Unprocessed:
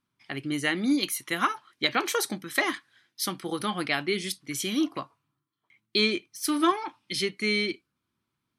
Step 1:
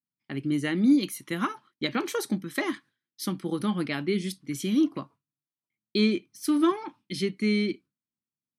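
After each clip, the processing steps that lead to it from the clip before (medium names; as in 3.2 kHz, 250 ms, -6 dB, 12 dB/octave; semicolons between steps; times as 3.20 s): peaking EQ 200 Hz +13.5 dB 2.1 oct; band-stop 720 Hz, Q 12; gate with hold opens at -43 dBFS; trim -6.5 dB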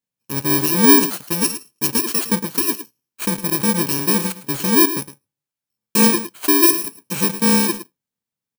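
bit-reversed sample order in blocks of 64 samples; delay 109 ms -12.5 dB; in parallel at -7.5 dB: bit crusher 6-bit; on the sum: trim +6 dB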